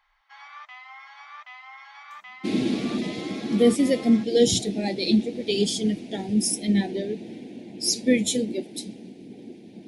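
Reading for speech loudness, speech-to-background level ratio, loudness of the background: -24.0 LUFS, 19.5 dB, -43.5 LUFS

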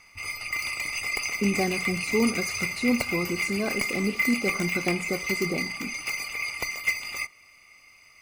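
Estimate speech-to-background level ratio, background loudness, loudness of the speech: -0.5 dB, -28.5 LUFS, -29.0 LUFS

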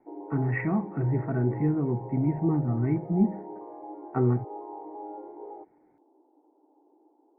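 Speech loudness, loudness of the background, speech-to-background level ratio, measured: -27.5 LUFS, -41.5 LUFS, 14.0 dB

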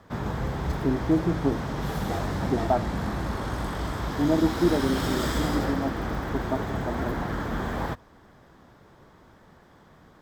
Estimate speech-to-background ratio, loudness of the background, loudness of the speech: 1.5 dB, -30.0 LUFS, -28.5 LUFS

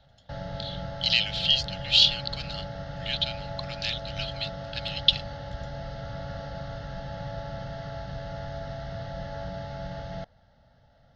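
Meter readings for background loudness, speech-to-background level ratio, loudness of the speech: -37.5 LUFS, 12.5 dB, -25.0 LUFS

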